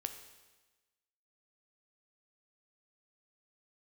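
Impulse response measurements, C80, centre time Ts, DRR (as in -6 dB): 11.0 dB, 17 ms, 6.5 dB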